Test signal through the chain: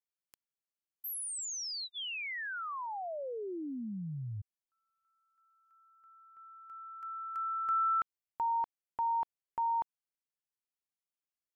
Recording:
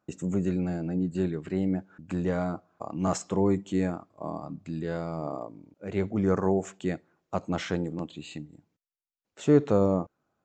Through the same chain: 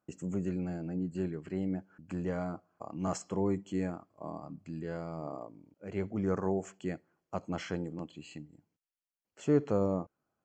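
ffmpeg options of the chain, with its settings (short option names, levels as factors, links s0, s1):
-af "asuperstop=centerf=3700:order=8:qfactor=6.8,volume=0.473"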